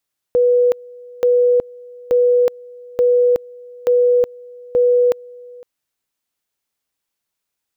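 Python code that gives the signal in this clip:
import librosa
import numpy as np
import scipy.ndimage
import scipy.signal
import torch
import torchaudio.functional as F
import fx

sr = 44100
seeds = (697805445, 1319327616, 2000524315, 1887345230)

y = fx.two_level_tone(sr, hz=490.0, level_db=-10.0, drop_db=24.5, high_s=0.37, low_s=0.51, rounds=6)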